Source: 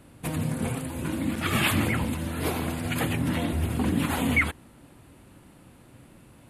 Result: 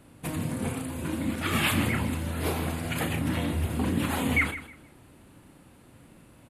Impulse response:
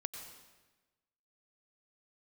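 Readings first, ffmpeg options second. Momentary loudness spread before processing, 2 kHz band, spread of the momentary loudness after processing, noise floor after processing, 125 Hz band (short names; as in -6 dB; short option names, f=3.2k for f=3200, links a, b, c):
7 LU, -1.0 dB, 8 LU, -55 dBFS, -1.5 dB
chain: -filter_complex "[0:a]bandreject=f=60:t=h:w=6,bandreject=f=120:t=h:w=6,asplit=2[a][b];[b]adelay=35,volume=-8dB[c];[a][c]amix=inputs=2:normalize=0,aecho=1:1:157|314|471:0.2|0.0459|0.0106,volume=-2dB"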